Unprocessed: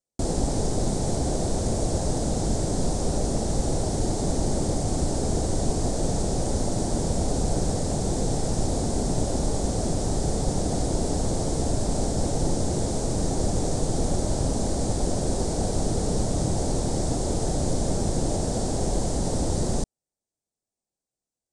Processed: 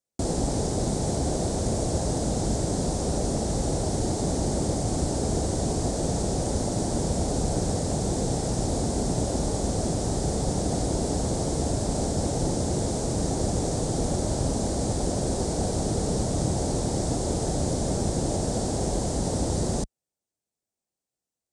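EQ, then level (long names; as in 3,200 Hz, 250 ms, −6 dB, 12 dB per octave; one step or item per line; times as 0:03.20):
high-pass filter 44 Hz
0.0 dB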